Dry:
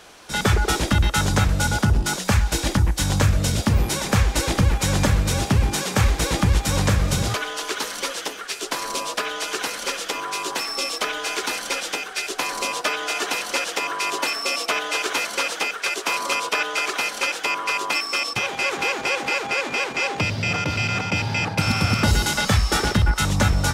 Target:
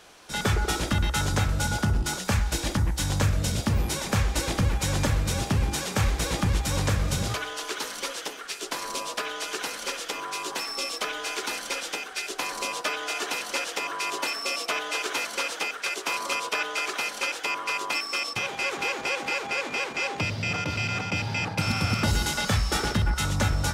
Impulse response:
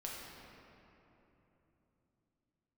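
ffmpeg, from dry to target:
-af "bandreject=frequency=65.87:width_type=h:width=4,bandreject=frequency=131.74:width_type=h:width=4,bandreject=frequency=197.61:width_type=h:width=4,bandreject=frequency=263.48:width_type=h:width=4,bandreject=frequency=329.35:width_type=h:width=4,bandreject=frequency=395.22:width_type=h:width=4,bandreject=frequency=461.09:width_type=h:width=4,bandreject=frequency=526.96:width_type=h:width=4,bandreject=frequency=592.83:width_type=h:width=4,bandreject=frequency=658.7:width_type=h:width=4,bandreject=frequency=724.57:width_type=h:width=4,bandreject=frequency=790.44:width_type=h:width=4,bandreject=frequency=856.31:width_type=h:width=4,bandreject=frequency=922.18:width_type=h:width=4,bandreject=frequency=988.05:width_type=h:width=4,bandreject=frequency=1053.92:width_type=h:width=4,bandreject=frequency=1119.79:width_type=h:width=4,bandreject=frequency=1185.66:width_type=h:width=4,bandreject=frequency=1251.53:width_type=h:width=4,bandreject=frequency=1317.4:width_type=h:width=4,bandreject=frequency=1383.27:width_type=h:width=4,bandreject=frequency=1449.14:width_type=h:width=4,bandreject=frequency=1515.01:width_type=h:width=4,bandreject=frequency=1580.88:width_type=h:width=4,bandreject=frequency=1646.75:width_type=h:width=4,bandreject=frequency=1712.62:width_type=h:width=4,bandreject=frequency=1778.49:width_type=h:width=4,bandreject=frequency=1844.36:width_type=h:width=4,bandreject=frequency=1910.23:width_type=h:width=4,bandreject=frequency=1976.1:width_type=h:width=4,bandreject=frequency=2041.97:width_type=h:width=4,bandreject=frequency=2107.84:width_type=h:width=4,bandreject=frequency=2173.71:width_type=h:width=4,bandreject=frequency=2239.58:width_type=h:width=4,volume=-5dB"

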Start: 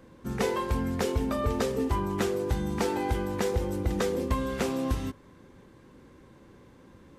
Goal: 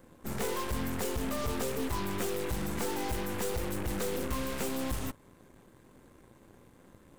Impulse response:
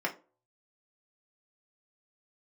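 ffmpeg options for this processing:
-af "aexciter=amount=2.5:drive=6.9:freq=7300,volume=24.5dB,asoftclip=hard,volume=-24.5dB,aeval=exprs='0.0631*(cos(1*acos(clip(val(0)/0.0631,-1,1)))-cos(1*PI/2))+0.0178*(cos(8*acos(clip(val(0)/0.0631,-1,1)))-cos(8*PI/2))':channel_layout=same,volume=-5dB"

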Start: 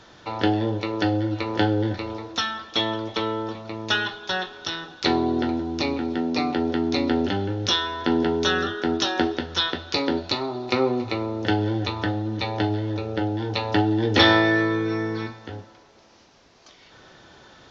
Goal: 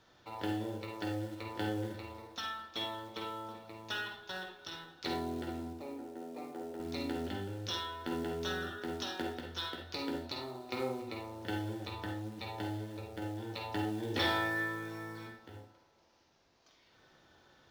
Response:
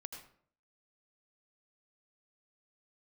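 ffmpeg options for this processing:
-filter_complex "[0:a]asettb=1/sr,asplit=3[link_01][link_02][link_03];[link_01]atrim=end=5.734[link_04];[link_02]atrim=start=5.73:end=6.8,asetpts=PTS-STARTPTS,afade=type=in:duration=0.004:curve=qsin,afade=type=out:start_time=1.066:duration=0.004:curve=qsin,bandpass=frequency=550:width_type=q:width=1.1:csg=0[link_05];[link_03]atrim=start=6.796[link_06];[link_04][link_05]acrossfade=duration=0.004:curve1=hsin:curve2=qsin[link_07];[link_07][link_06]acrossfade=duration=0.004:curve1=qsin:curve2=hsin,acrusher=bits=5:mode=log:mix=0:aa=0.000001[link_08];[1:a]atrim=start_sample=2205,asetrate=74970,aresample=44100[link_09];[link_08][link_09]afir=irnorm=-1:irlink=0,volume=-6.5dB"

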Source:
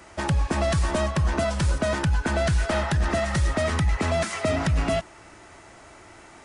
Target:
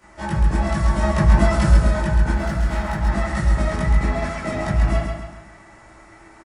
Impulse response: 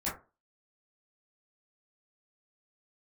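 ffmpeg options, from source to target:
-filter_complex "[0:a]asettb=1/sr,asplit=3[link_01][link_02][link_03];[link_01]atrim=end=1.014[link_04];[link_02]atrim=start=1.01:end=1.74,asetpts=PTS-STARTPTS,afade=type=in:duration=0.004:curve=qsin,afade=type=out:start_time=0.726:duration=0.004:curve=qsin,acontrast=28[link_05];[link_03]atrim=start=1.736[link_06];[link_04][link_05]acrossfade=duration=0.004:curve1=hsin:curve2=qsin[link_07];[link_07][link_06]acrossfade=duration=0.004:curve1=qsin:curve2=hsin,asettb=1/sr,asplit=3[link_08][link_09][link_10];[link_08]atrim=end=2.314[link_11];[link_09]atrim=start=2.31:end=3.02,asetpts=PTS-STARTPTS,afade=type=in:duration=0.004:curve=qsin,afade=type=out:start_time=0.706:duration=0.004:curve=qsin,volume=23dB,asoftclip=hard,volume=-23dB[link_12];[link_10]atrim=start=3.016[link_13];[link_11][link_12]acrossfade=duration=0.004:curve1=hsin:curve2=qsin[link_14];[link_14][link_13]acrossfade=duration=0.004:curve1=qsin:curve2=hsin,asettb=1/sr,asplit=3[link_15][link_16][link_17];[link_15]atrim=end=4.034[link_18];[link_16]atrim=start=4.03:end=4.45,asetpts=PTS-STARTPTS,afade=type=in:duration=0.004:curve=qsin,afade=type=out:start_time=0.416:duration=0.004:curve=qsin,highshelf=frequency=7000:gain=-10.5[link_19];[link_17]atrim=start=4.446[link_20];[link_18][link_19]acrossfade=duration=0.004:curve1=hsin:curve2=qsin[link_21];[link_21][link_20]acrossfade=duration=0.004:curve1=qsin:curve2=hsin,aecho=1:1:135|270|405|540|675:0.562|0.247|0.109|0.0479|0.0211[link_22];[1:a]atrim=start_sample=2205[link_23];[link_22][link_23]afir=irnorm=-1:irlink=0,volume=-6dB"

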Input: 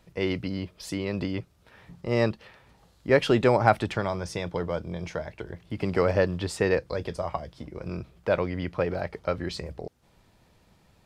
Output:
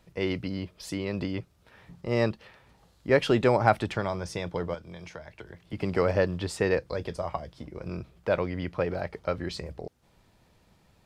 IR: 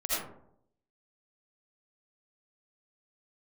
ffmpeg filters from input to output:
-filter_complex "[0:a]asettb=1/sr,asplit=3[link_01][link_02][link_03];[link_01]atrim=end=4.744[link_04];[link_02]atrim=start=4.74:end=5.73,asetpts=PTS-STARTPTS,afade=type=in:duration=0.004:curve=qsin,afade=type=out:start_time=0.986:duration=0.004:curve=qsin,acrossover=split=120|970[link_05][link_06][link_07];[link_05]acompressor=threshold=-51dB:ratio=4[link_08];[link_06]acompressor=threshold=-42dB:ratio=4[link_09];[link_07]acompressor=threshold=-43dB:ratio=4[link_10];[link_08][link_09][link_10]amix=inputs=3:normalize=0[link_11];[link_03]atrim=start=5.726[link_12];[link_04][link_11]acrossfade=duration=0.004:curve1=hsin:curve2=qsin[link_13];[link_13][link_12]acrossfade=duration=0.004:curve1=qsin:curve2=hsin,volume=-1.5dB"

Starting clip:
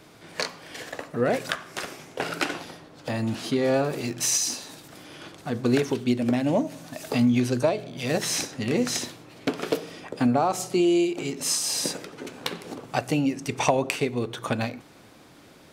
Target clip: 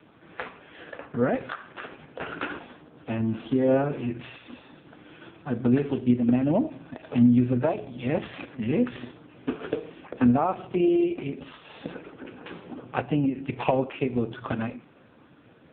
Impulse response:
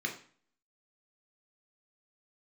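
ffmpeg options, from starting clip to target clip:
-filter_complex "[0:a]asplit=2[link_01][link_02];[1:a]atrim=start_sample=2205,lowshelf=frequency=240:gain=-7,highshelf=frequency=8500:gain=-6.5[link_03];[link_02][link_03]afir=irnorm=-1:irlink=0,volume=-12.5dB[link_04];[link_01][link_04]amix=inputs=2:normalize=0" -ar 8000 -c:a libopencore_amrnb -b:a 4750

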